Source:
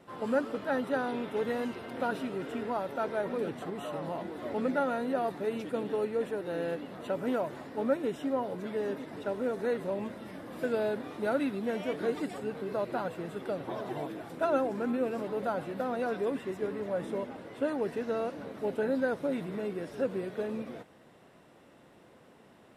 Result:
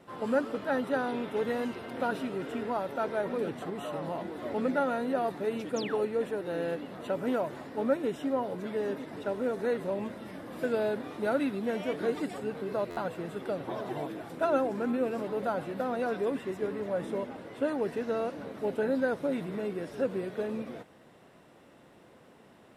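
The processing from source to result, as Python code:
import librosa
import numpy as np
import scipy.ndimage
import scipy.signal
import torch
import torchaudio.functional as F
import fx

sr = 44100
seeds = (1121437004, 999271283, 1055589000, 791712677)

y = fx.spec_paint(x, sr, seeds[0], shape='fall', start_s=5.76, length_s=0.29, low_hz=310.0, high_hz=7400.0, level_db=-42.0)
y = fx.buffer_glitch(y, sr, at_s=(12.9,), block=512, repeats=5)
y = y * 10.0 ** (1.0 / 20.0)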